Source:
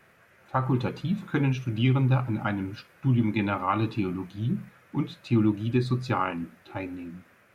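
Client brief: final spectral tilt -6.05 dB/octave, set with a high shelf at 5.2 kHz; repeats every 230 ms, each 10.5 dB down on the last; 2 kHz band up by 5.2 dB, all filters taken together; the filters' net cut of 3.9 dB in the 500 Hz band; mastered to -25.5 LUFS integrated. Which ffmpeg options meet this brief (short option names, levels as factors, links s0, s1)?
-af "equalizer=f=500:t=o:g=-6.5,equalizer=f=2000:t=o:g=8,highshelf=f=5200:g=-4.5,aecho=1:1:230|460|690:0.299|0.0896|0.0269,volume=1.26"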